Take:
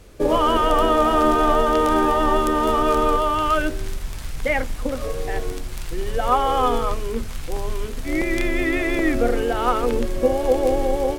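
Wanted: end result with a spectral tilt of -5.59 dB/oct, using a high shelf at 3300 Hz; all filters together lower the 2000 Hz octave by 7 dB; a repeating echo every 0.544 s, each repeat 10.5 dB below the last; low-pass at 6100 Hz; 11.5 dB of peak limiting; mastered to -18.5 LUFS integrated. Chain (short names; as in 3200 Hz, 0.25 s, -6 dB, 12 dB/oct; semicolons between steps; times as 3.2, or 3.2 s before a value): LPF 6100 Hz; bell 2000 Hz -6.5 dB; high shelf 3300 Hz -6.5 dB; limiter -16.5 dBFS; feedback echo 0.544 s, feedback 30%, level -10.5 dB; gain +8 dB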